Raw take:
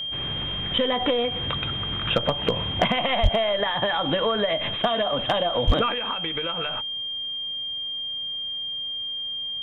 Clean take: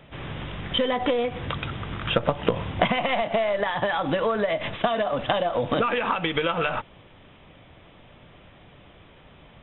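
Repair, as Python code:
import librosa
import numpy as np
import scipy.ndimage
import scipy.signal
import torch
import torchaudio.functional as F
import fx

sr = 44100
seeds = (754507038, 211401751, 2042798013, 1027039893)

y = fx.fix_declip(x, sr, threshold_db=-10.5)
y = fx.notch(y, sr, hz=3200.0, q=30.0)
y = fx.highpass(y, sr, hz=140.0, slope=24, at=(3.22, 3.34), fade=0.02)
y = fx.highpass(y, sr, hz=140.0, slope=24, at=(5.66, 5.78), fade=0.02)
y = fx.gain(y, sr, db=fx.steps((0.0, 0.0), (5.92, 6.5)))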